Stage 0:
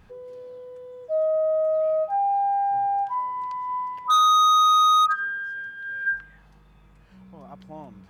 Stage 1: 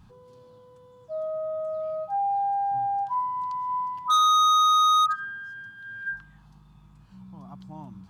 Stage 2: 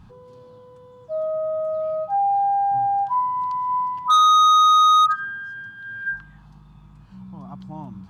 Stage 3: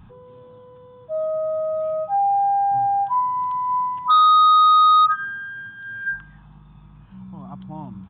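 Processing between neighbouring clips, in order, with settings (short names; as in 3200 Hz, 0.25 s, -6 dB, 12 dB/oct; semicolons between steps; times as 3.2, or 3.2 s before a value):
graphic EQ 125/250/500/1000/2000/4000/8000 Hz +9/+5/-12/+7/-9/+4/+3 dB; gain -3 dB
high shelf 4500 Hz -7.5 dB; gain +6 dB
downsampling 8000 Hz; gain +1 dB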